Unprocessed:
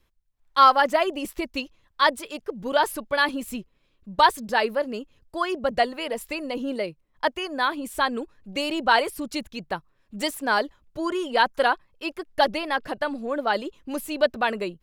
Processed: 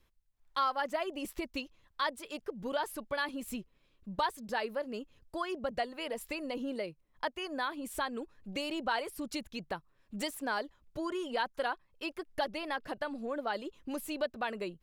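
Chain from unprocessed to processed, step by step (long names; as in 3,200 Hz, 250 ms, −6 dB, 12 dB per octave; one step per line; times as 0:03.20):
downward compressor 2 to 1, threshold −35 dBFS, peak gain reduction 13.5 dB
level −3 dB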